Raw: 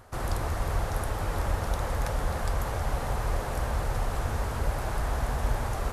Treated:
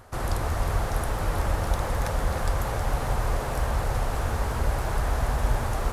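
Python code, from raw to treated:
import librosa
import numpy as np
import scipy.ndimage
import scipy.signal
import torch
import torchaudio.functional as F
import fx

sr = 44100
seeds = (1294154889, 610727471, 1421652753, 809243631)

y = fx.echo_crushed(x, sr, ms=317, feedback_pct=55, bits=9, wet_db=-11.0)
y = y * librosa.db_to_amplitude(2.5)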